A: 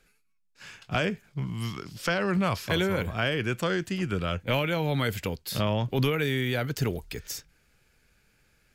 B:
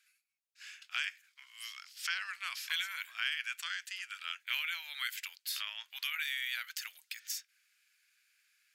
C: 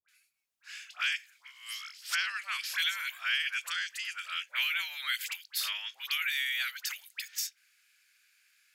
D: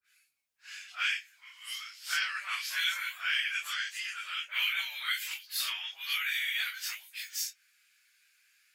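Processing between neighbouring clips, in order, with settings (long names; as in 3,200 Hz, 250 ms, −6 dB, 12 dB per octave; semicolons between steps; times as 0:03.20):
inverse Chebyshev high-pass filter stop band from 370 Hz, stop band 70 dB; level −2.5 dB
all-pass dispersion highs, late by 87 ms, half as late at 1,100 Hz; level +5 dB
random phases in long frames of 100 ms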